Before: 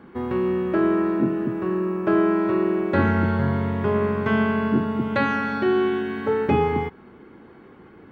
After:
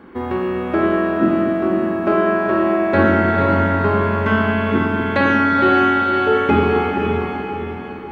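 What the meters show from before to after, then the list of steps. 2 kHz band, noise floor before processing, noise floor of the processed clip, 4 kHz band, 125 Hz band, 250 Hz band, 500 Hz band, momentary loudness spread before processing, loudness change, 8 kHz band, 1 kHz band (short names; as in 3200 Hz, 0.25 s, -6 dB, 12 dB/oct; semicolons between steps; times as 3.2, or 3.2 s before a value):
+8.5 dB, -48 dBFS, -29 dBFS, +8.5 dB, +4.0 dB, +4.0 dB, +5.0 dB, 4 LU, +5.5 dB, n/a, +9.0 dB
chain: bell 140 Hz -10 dB 0.54 oct; diffused feedback echo 0.493 s, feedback 48%, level -3.5 dB; spring tank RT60 1.3 s, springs 47 ms, chirp 75 ms, DRR 2 dB; gain +4.5 dB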